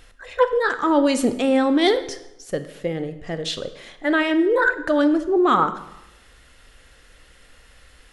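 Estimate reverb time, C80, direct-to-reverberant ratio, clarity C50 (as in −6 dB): 0.90 s, 14.5 dB, 10.0 dB, 12.5 dB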